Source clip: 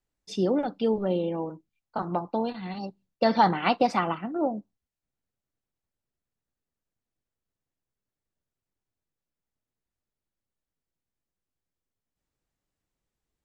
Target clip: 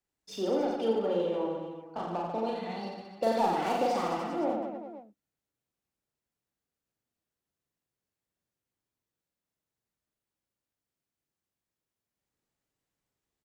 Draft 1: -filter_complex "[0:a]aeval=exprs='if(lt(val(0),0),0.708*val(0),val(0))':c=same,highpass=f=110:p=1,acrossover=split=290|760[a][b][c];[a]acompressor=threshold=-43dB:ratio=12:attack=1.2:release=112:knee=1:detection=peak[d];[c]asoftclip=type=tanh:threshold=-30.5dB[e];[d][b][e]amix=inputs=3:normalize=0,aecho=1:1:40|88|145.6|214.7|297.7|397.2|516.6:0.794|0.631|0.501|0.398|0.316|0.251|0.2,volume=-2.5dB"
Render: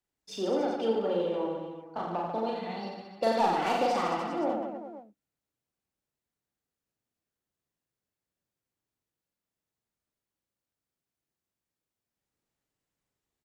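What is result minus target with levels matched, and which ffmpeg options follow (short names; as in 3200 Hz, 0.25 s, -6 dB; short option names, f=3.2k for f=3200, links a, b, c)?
soft clip: distortion -4 dB
-filter_complex "[0:a]aeval=exprs='if(lt(val(0),0),0.708*val(0),val(0))':c=same,highpass=f=110:p=1,acrossover=split=290|760[a][b][c];[a]acompressor=threshold=-43dB:ratio=12:attack=1.2:release=112:knee=1:detection=peak[d];[c]asoftclip=type=tanh:threshold=-37.5dB[e];[d][b][e]amix=inputs=3:normalize=0,aecho=1:1:40|88|145.6|214.7|297.7|397.2|516.6:0.794|0.631|0.501|0.398|0.316|0.251|0.2,volume=-2.5dB"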